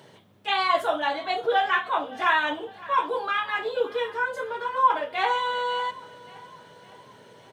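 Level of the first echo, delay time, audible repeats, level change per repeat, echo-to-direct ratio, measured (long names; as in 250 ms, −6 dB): −20.5 dB, 561 ms, 3, −5.5 dB, −19.0 dB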